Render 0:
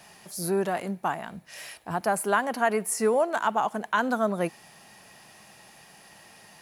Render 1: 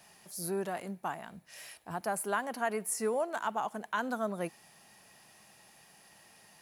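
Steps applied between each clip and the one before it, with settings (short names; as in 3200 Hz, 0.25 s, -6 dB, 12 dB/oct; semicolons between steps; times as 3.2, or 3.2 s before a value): high shelf 6900 Hz +5 dB; gain -8.5 dB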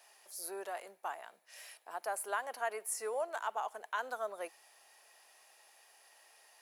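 HPF 450 Hz 24 dB/oct; gain -3.5 dB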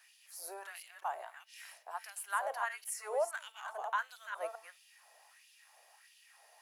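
reverse delay 0.207 s, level -6 dB; de-hum 221.9 Hz, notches 35; LFO high-pass sine 1.5 Hz 570–3100 Hz; gain -3 dB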